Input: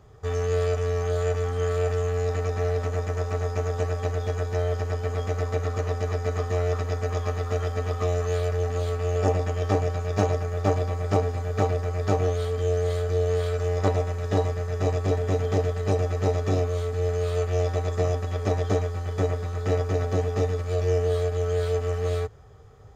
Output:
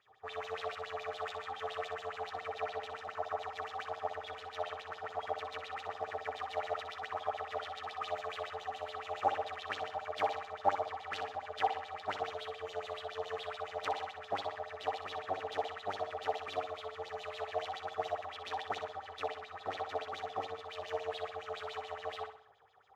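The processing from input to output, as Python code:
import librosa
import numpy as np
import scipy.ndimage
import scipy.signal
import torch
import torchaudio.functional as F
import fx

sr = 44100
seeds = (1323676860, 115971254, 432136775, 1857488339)

y = fx.tracing_dist(x, sr, depth_ms=0.29)
y = fx.filter_lfo_bandpass(y, sr, shape='sine', hz=7.1, low_hz=710.0, high_hz=3800.0, q=7.3)
y = fx.echo_feedback(y, sr, ms=62, feedback_pct=44, wet_db=-9)
y = y * 10.0 ** (5.0 / 20.0)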